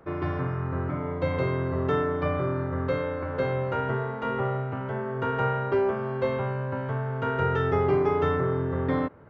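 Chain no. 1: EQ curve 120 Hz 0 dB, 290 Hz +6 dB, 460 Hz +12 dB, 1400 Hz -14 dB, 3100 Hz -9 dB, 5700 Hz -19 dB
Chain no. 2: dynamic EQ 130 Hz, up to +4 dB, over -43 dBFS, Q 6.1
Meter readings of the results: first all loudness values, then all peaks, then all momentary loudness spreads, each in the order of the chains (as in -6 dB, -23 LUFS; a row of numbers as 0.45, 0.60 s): -20.5, -27.0 LUFS; -5.0, -12.0 dBFS; 10, 5 LU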